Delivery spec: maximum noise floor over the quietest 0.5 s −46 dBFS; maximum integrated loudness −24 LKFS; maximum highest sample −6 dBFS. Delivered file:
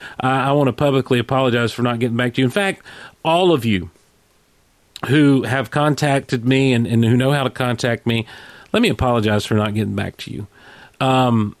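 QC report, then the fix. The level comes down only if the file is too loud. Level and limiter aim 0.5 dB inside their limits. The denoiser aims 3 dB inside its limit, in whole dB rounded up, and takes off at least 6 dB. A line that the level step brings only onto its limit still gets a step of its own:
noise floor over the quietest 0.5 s −57 dBFS: in spec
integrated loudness −17.5 LKFS: out of spec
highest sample −4.5 dBFS: out of spec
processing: level −7 dB

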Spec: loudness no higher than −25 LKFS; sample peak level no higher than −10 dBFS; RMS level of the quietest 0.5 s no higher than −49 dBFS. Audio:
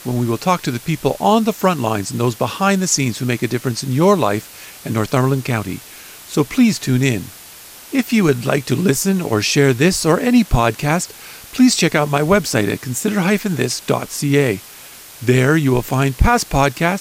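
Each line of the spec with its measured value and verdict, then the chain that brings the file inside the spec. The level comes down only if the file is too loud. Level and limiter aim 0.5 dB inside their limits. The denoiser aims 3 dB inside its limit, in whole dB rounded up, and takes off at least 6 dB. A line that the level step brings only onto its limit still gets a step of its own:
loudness −17.0 LKFS: out of spec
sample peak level −2.0 dBFS: out of spec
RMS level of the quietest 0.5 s −39 dBFS: out of spec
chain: broadband denoise 6 dB, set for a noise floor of −39 dBFS
level −8.5 dB

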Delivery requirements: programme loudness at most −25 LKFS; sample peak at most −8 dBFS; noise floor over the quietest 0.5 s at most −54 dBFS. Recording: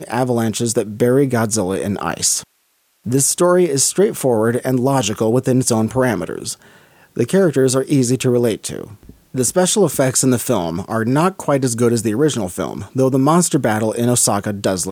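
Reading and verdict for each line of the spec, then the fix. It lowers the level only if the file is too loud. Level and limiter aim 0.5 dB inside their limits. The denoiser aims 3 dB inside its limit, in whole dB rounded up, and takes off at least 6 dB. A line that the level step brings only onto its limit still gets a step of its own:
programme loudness −16.5 LKFS: out of spec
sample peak −4.0 dBFS: out of spec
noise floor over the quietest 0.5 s −62 dBFS: in spec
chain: level −9 dB

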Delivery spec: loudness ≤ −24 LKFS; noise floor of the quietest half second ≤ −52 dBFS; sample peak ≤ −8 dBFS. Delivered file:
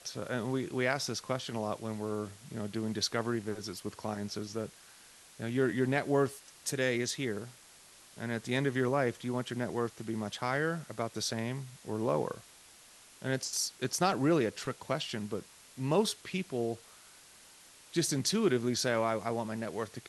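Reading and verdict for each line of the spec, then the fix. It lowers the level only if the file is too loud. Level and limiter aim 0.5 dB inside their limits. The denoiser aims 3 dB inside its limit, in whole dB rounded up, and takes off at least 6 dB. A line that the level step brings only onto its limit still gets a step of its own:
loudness −33.5 LKFS: in spec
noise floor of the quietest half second −57 dBFS: in spec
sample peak −14.5 dBFS: in spec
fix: no processing needed

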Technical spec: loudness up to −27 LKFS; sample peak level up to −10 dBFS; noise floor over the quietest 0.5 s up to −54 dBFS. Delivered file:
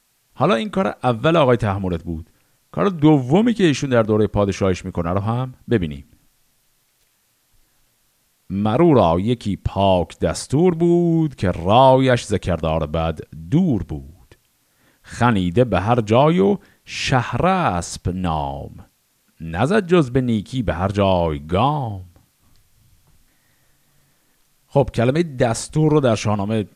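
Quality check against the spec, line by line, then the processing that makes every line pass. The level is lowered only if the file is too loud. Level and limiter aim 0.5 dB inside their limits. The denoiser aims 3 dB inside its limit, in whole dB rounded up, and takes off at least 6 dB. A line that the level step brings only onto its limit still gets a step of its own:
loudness −18.5 LKFS: out of spec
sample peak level −2.0 dBFS: out of spec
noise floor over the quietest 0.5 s −63 dBFS: in spec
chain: level −9 dB

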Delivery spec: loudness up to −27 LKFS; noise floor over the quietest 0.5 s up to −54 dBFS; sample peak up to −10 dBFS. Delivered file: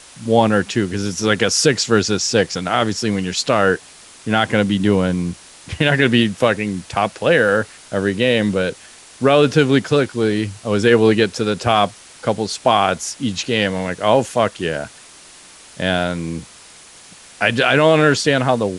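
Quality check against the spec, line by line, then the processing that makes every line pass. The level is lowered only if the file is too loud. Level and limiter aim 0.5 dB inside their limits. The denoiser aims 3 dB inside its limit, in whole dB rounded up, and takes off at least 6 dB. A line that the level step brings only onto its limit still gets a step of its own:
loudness −17.5 LKFS: out of spec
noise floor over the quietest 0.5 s −43 dBFS: out of spec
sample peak −1.5 dBFS: out of spec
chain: broadband denoise 6 dB, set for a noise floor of −43 dBFS
level −10 dB

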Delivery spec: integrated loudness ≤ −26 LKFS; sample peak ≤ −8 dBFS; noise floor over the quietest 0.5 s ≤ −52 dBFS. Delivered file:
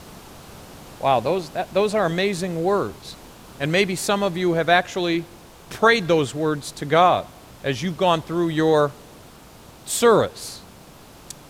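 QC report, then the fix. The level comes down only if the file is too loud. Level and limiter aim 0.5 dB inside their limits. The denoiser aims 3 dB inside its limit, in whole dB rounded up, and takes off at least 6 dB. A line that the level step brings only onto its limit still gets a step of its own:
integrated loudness −21.0 LKFS: out of spec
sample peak −4.0 dBFS: out of spec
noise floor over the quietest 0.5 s −45 dBFS: out of spec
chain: broadband denoise 6 dB, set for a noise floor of −45 dBFS
level −5.5 dB

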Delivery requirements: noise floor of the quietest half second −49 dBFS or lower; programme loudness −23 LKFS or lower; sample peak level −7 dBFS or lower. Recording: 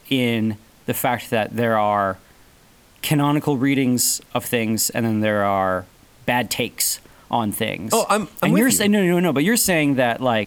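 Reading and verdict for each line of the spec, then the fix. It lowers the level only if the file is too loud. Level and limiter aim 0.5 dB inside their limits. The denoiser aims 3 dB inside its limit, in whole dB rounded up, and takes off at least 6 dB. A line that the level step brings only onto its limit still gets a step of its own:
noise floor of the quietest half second −52 dBFS: in spec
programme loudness −20.0 LKFS: out of spec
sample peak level −5.0 dBFS: out of spec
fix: level −3.5 dB

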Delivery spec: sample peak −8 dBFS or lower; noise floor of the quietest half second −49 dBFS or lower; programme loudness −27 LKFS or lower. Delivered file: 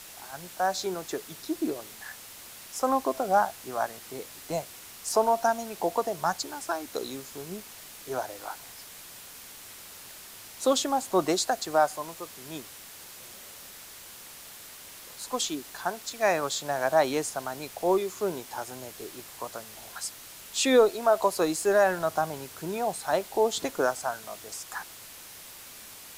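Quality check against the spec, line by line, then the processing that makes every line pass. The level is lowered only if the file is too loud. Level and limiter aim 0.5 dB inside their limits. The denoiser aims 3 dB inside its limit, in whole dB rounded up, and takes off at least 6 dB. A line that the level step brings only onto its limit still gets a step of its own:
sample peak −9.5 dBFS: in spec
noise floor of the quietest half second −46 dBFS: out of spec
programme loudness −28.5 LKFS: in spec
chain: broadband denoise 6 dB, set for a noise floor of −46 dBFS

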